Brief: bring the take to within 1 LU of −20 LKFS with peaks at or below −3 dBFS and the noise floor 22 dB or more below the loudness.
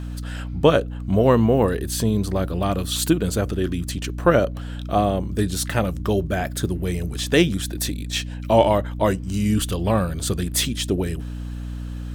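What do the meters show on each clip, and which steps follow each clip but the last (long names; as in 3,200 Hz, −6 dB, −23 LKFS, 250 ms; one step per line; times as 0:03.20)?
crackle rate 20 per second; mains hum 60 Hz; hum harmonics up to 300 Hz; level of the hum −28 dBFS; integrated loudness −22.0 LKFS; sample peak −2.0 dBFS; target loudness −20.0 LKFS
→ click removal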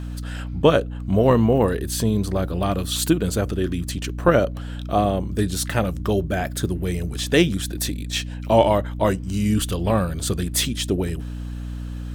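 crackle rate 2.4 per second; mains hum 60 Hz; hum harmonics up to 300 Hz; level of the hum −28 dBFS
→ hum removal 60 Hz, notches 5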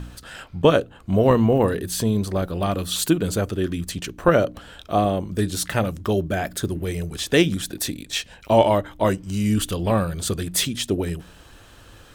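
mains hum none found; integrated loudness −22.5 LKFS; sample peak −2.0 dBFS; target loudness −20.0 LKFS
→ level +2.5 dB
brickwall limiter −3 dBFS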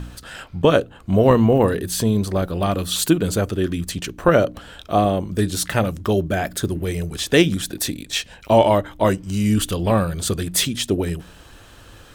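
integrated loudness −20.0 LKFS; sample peak −3.0 dBFS; background noise floor −45 dBFS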